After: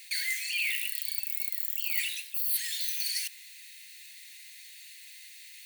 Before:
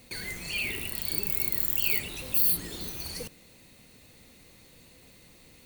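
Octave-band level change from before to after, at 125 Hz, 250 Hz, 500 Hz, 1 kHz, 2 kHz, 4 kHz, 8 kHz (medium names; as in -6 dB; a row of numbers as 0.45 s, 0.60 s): under -40 dB, under -40 dB, under -40 dB, under -25 dB, +2.0 dB, +3.0 dB, +1.0 dB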